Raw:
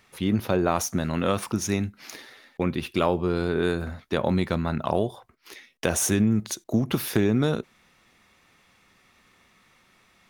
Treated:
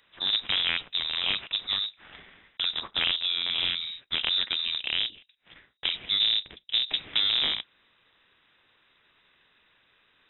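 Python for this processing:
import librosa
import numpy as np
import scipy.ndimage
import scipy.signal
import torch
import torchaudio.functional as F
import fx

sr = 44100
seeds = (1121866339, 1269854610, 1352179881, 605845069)

y = fx.cycle_switch(x, sr, every=3, mode='inverted')
y = fx.peak_eq(y, sr, hz=2700.0, db=-8.0, octaves=0.61, at=(4.77, 7.13))
y = fx.freq_invert(y, sr, carrier_hz=3800)
y = F.gain(torch.from_numpy(y), -4.0).numpy()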